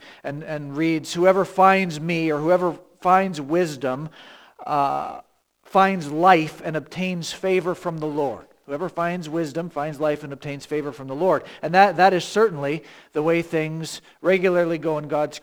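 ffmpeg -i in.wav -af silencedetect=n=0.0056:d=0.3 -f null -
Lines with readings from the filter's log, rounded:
silence_start: 5.21
silence_end: 5.66 | silence_duration: 0.45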